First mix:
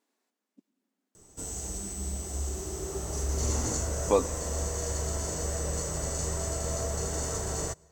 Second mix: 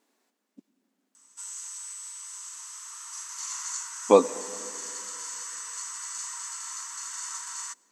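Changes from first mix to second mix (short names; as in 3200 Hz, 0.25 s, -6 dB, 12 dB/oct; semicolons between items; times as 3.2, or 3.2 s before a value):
speech +7.0 dB; background: add brick-wall FIR band-pass 900–12000 Hz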